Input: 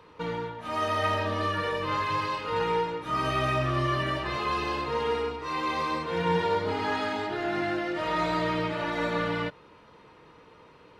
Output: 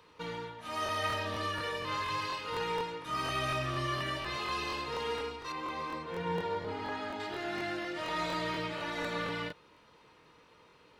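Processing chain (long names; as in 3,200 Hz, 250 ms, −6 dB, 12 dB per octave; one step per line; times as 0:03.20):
high-shelf EQ 2,500 Hz +11 dB, from 0:05.52 −2 dB, from 0:07.20 +10 dB
regular buffer underruns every 0.24 s, samples 1,024, repeat, from 0:00.84
level −8.5 dB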